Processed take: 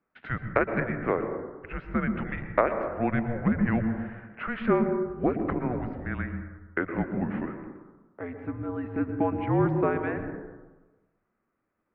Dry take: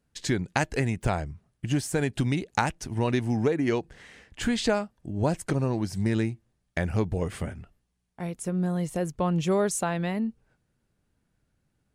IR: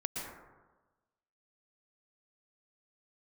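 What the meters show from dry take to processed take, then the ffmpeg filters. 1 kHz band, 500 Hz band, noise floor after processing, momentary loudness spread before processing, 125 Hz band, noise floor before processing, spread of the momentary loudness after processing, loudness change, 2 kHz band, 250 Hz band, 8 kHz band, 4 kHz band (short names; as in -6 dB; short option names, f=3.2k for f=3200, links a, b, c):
+0.5 dB, +0.5 dB, -79 dBFS, 11 LU, -4.0 dB, -76 dBFS, 13 LU, -1.0 dB, +0.5 dB, 0.0 dB, under -40 dB, under -15 dB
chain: -filter_complex "[0:a]highpass=f=490:t=q:w=0.5412,highpass=f=490:t=q:w=1.307,lowpass=f=2.4k:t=q:w=0.5176,lowpass=f=2.4k:t=q:w=0.7071,lowpass=f=2.4k:t=q:w=1.932,afreqshift=-250,asplit=2[a][b];[1:a]atrim=start_sample=2205,lowshelf=f=390:g=11.5[c];[b][c]afir=irnorm=-1:irlink=0,volume=-7dB[d];[a][d]amix=inputs=2:normalize=0"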